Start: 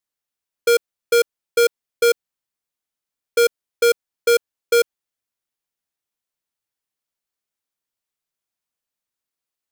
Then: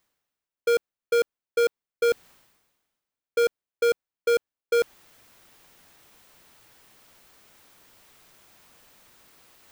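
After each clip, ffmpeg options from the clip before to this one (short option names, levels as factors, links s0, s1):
-af "equalizer=f=12000:t=o:w=2.6:g=-8.5,areverse,acompressor=mode=upward:threshold=0.1:ratio=2.5,areverse,volume=0.531"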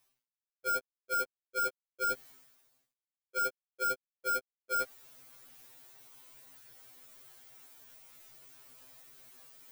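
-af "highshelf=f=7600:g=9,acrusher=bits=10:mix=0:aa=0.000001,afftfilt=real='re*2.45*eq(mod(b,6),0)':imag='im*2.45*eq(mod(b,6),0)':win_size=2048:overlap=0.75,volume=0.668"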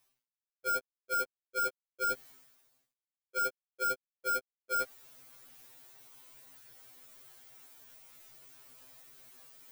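-af anull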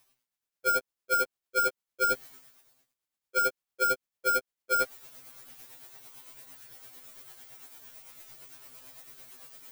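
-af "tremolo=f=8.9:d=0.44,volume=2.51"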